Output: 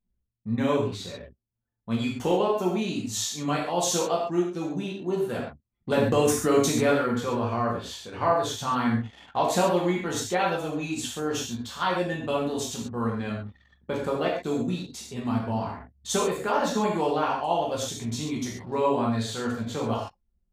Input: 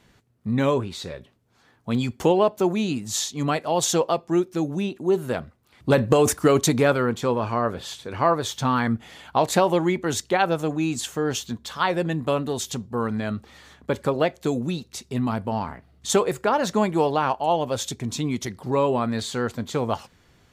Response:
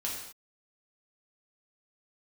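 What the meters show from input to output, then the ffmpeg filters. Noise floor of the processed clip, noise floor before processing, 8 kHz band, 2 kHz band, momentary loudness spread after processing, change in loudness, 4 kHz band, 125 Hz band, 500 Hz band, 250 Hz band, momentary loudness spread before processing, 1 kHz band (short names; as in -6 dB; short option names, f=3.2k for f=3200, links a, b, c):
-77 dBFS, -60 dBFS, -2.5 dB, -3.0 dB, 10 LU, -3.0 dB, -2.5 dB, -4.0 dB, -3.5 dB, -3.0 dB, 11 LU, -2.5 dB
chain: -filter_complex "[1:a]atrim=start_sample=2205,atrim=end_sample=6615[a];[0:a][a]afir=irnorm=-1:irlink=0,anlmdn=0.398,volume=-6dB"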